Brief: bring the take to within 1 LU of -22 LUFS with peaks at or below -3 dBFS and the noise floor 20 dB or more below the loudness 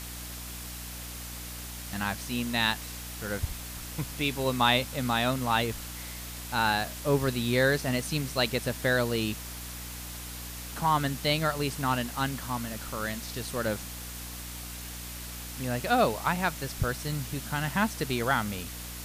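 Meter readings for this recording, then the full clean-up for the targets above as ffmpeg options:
hum 60 Hz; harmonics up to 300 Hz; hum level -41 dBFS; noise floor -40 dBFS; noise floor target -50 dBFS; loudness -30.0 LUFS; peak -8.5 dBFS; loudness target -22.0 LUFS
-> -af "bandreject=f=60:t=h:w=4,bandreject=f=120:t=h:w=4,bandreject=f=180:t=h:w=4,bandreject=f=240:t=h:w=4,bandreject=f=300:t=h:w=4"
-af "afftdn=nr=10:nf=-40"
-af "volume=8dB,alimiter=limit=-3dB:level=0:latency=1"

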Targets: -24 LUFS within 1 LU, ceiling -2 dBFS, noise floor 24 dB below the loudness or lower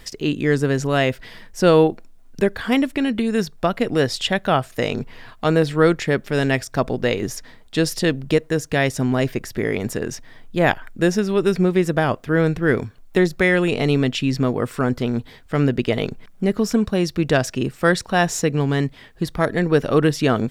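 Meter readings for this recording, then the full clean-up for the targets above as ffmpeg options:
loudness -20.5 LUFS; peak -2.0 dBFS; loudness target -24.0 LUFS
-> -af "volume=-3.5dB"

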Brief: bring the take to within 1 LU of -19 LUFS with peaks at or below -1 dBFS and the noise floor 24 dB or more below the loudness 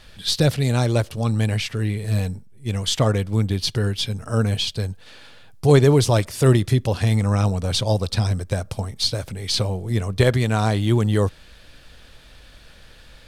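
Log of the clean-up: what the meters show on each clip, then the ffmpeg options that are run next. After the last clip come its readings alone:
loudness -21.0 LUFS; peak -4.0 dBFS; loudness target -19.0 LUFS
-> -af "volume=2dB"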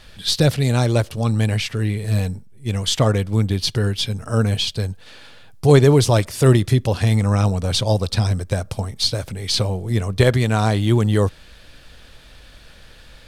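loudness -19.0 LUFS; peak -2.0 dBFS; noise floor -45 dBFS

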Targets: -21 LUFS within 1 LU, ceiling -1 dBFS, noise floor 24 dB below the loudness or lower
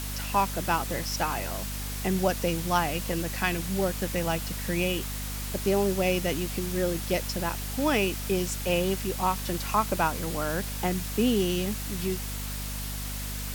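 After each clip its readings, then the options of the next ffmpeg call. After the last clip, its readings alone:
hum 50 Hz; harmonics up to 250 Hz; hum level -33 dBFS; noise floor -34 dBFS; noise floor target -53 dBFS; loudness -28.5 LUFS; peak -9.5 dBFS; loudness target -21.0 LUFS
-> -af "bandreject=f=50:t=h:w=4,bandreject=f=100:t=h:w=4,bandreject=f=150:t=h:w=4,bandreject=f=200:t=h:w=4,bandreject=f=250:t=h:w=4"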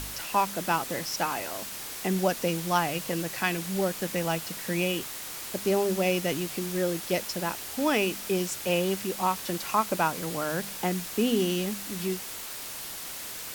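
hum none; noise floor -39 dBFS; noise floor target -53 dBFS
-> -af "afftdn=nr=14:nf=-39"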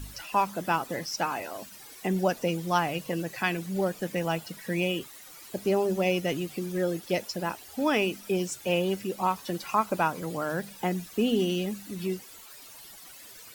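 noise floor -48 dBFS; noise floor target -54 dBFS
-> -af "afftdn=nr=6:nf=-48"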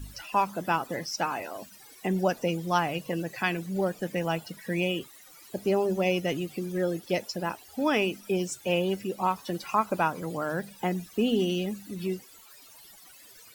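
noise floor -52 dBFS; noise floor target -54 dBFS
-> -af "afftdn=nr=6:nf=-52"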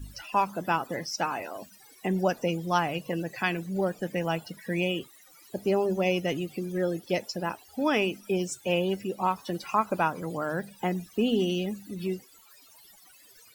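noise floor -56 dBFS; loudness -29.5 LUFS; peak -11.0 dBFS; loudness target -21.0 LUFS
-> -af "volume=8.5dB"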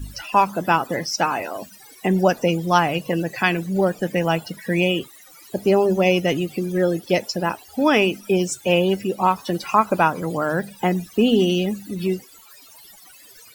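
loudness -21.0 LUFS; peak -2.5 dBFS; noise floor -47 dBFS

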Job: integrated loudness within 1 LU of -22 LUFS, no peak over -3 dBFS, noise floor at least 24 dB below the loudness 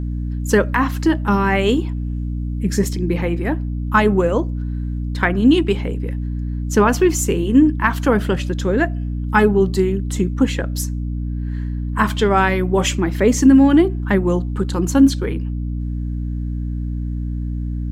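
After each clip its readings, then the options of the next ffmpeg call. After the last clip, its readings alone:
hum 60 Hz; harmonics up to 300 Hz; hum level -21 dBFS; loudness -18.5 LUFS; peak -2.0 dBFS; loudness target -22.0 LUFS
-> -af "bandreject=f=60:t=h:w=6,bandreject=f=120:t=h:w=6,bandreject=f=180:t=h:w=6,bandreject=f=240:t=h:w=6,bandreject=f=300:t=h:w=6"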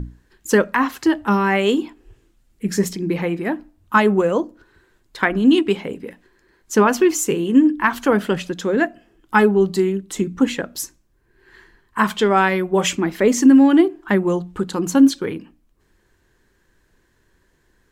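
hum none; loudness -18.0 LUFS; peak -2.5 dBFS; loudness target -22.0 LUFS
-> -af "volume=-4dB"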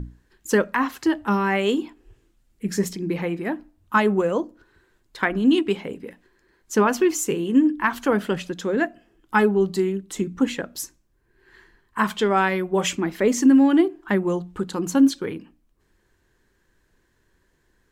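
loudness -22.0 LUFS; peak -6.5 dBFS; noise floor -66 dBFS

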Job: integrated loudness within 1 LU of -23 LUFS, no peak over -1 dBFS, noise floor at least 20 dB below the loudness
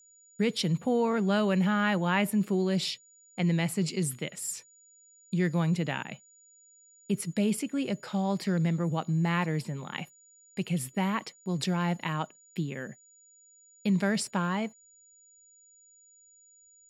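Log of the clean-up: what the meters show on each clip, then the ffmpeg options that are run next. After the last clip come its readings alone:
steady tone 6900 Hz; tone level -57 dBFS; loudness -29.5 LUFS; peak -12.0 dBFS; loudness target -23.0 LUFS
-> -af "bandreject=f=6.9k:w=30"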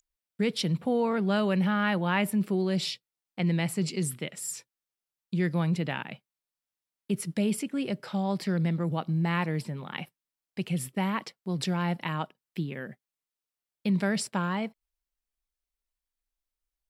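steady tone none; loudness -29.5 LUFS; peak -12.0 dBFS; loudness target -23.0 LUFS
-> -af "volume=6.5dB"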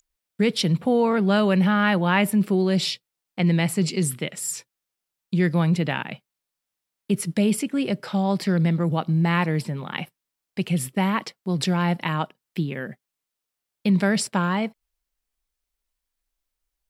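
loudness -23.0 LUFS; peak -5.5 dBFS; noise floor -85 dBFS

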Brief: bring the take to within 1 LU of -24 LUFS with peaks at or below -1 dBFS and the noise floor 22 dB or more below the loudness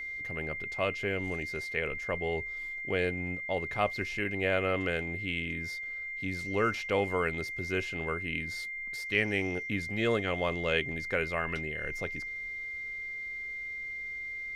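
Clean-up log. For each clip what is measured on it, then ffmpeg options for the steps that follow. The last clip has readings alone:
steady tone 2100 Hz; tone level -36 dBFS; loudness -32.5 LUFS; peak -13.5 dBFS; loudness target -24.0 LUFS
-> -af "bandreject=f=2.1k:w=30"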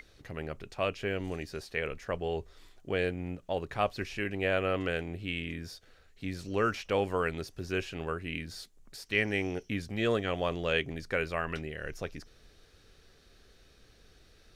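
steady tone none; loudness -33.5 LUFS; peak -13.5 dBFS; loudness target -24.0 LUFS
-> -af "volume=9.5dB"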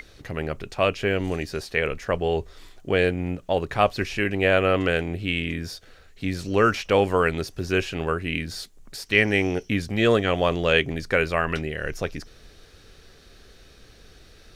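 loudness -24.0 LUFS; peak -4.0 dBFS; noise floor -51 dBFS

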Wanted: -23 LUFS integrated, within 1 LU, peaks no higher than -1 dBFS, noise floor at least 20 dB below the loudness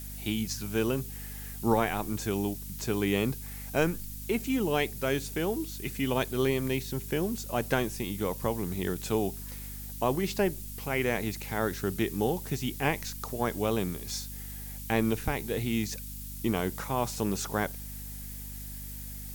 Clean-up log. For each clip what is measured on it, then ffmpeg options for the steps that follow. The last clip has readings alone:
hum 50 Hz; harmonics up to 250 Hz; hum level -40 dBFS; noise floor -40 dBFS; noise floor target -52 dBFS; loudness -31.5 LUFS; peak -12.0 dBFS; loudness target -23.0 LUFS
-> -af "bandreject=f=50:t=h:w=4,bandreject=f=100:t=h:w=4,bandreject=f=150:t=h:w=4,bandreject=f=200:t=h:w=4,bandreject=f=250:t=h:w=4"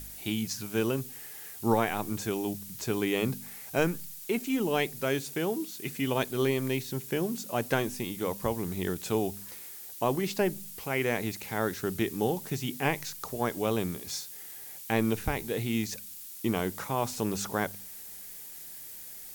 hum none; noise floor -45 dBFS; noise floor target -52 dBFS
-> -af "afftdn=nr=7:nf=-45"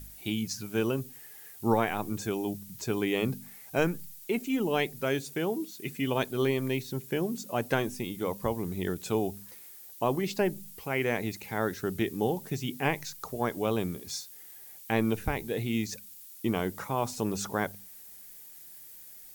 noise floor -49 dBFS; noise floor target -52 dBFS
-> -af "afftdn=nr=6:nf=-49"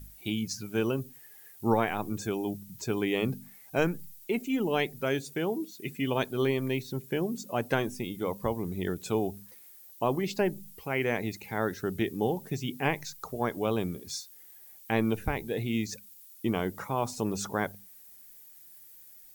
noise floor -53 dBFS; loudness -31.5 LUFS; peak -11.5 dBFS; loudness target -23.0 LUFS
-> -af "volume=8.5dB"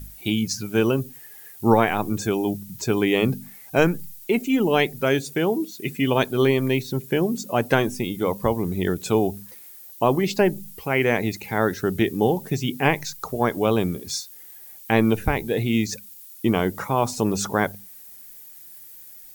loudness -23.0 LUFS; peak -3.0 dBFS; noise floor -44 dBFS

